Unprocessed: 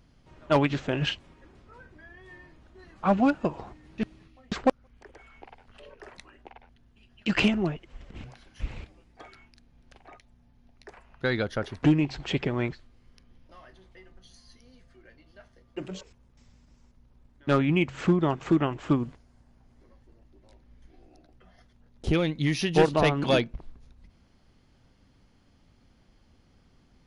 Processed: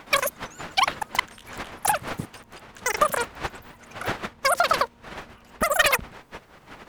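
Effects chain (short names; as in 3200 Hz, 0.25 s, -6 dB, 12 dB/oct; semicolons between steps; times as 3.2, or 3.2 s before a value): wind noise 410 Hz -42 dBFS; wide varispeed 3.93×; gain +3 dB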